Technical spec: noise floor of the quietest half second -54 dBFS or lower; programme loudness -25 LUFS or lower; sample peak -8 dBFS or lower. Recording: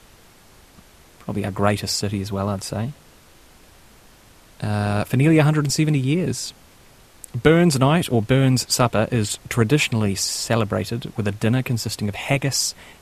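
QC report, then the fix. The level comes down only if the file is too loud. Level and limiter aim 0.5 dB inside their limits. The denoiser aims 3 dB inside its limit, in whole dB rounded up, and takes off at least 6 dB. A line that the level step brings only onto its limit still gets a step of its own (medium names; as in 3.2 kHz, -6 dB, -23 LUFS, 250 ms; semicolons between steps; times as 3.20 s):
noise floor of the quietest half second -50 dBFS: fail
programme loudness -20.5 LUFS: fail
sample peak -2.0 dBFS: fail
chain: trim -5 dB; peak limiter -8.5 dBFS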